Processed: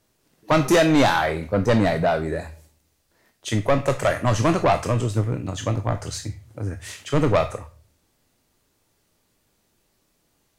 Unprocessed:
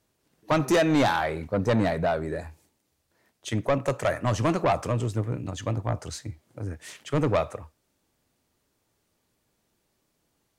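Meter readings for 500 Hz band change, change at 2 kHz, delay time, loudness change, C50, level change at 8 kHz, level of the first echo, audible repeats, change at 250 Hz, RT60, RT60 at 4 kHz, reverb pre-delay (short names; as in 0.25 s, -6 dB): +4.5 dB, +5.5 dB, none, +4.5 dB, 14.0 dB, +6.5 dB, none, none, +4.5 dB, 0.45 s, 0.30 s, 16 ms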